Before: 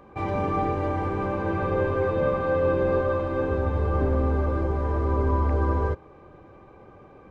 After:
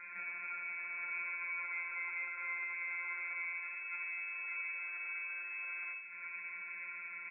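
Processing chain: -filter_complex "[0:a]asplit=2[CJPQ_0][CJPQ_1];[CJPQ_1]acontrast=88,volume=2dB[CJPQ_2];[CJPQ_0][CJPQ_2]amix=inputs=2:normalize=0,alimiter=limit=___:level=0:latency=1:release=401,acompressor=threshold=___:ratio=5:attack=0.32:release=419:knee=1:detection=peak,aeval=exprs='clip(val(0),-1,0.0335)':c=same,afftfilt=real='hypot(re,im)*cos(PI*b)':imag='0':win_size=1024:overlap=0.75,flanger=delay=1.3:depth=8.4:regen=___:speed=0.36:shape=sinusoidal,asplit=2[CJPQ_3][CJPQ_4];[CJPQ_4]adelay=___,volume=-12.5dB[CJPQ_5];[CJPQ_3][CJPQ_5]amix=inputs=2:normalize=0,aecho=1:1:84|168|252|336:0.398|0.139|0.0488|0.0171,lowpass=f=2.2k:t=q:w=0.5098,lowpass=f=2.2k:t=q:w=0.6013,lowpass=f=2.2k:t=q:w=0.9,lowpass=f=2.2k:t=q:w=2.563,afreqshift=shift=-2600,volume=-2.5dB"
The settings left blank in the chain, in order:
-10.5dB, -27dB, -82, 17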